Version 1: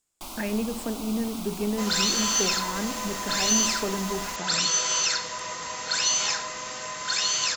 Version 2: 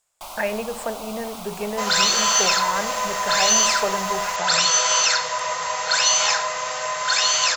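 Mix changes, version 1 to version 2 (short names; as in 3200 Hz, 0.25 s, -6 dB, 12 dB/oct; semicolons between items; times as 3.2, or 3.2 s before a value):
first sound -4.5 dB; master: add EQ curve 170 Hz 0 dB, 270 Hz -11 dB, 600 Hz +12 dB, 4800 Hz +5 dB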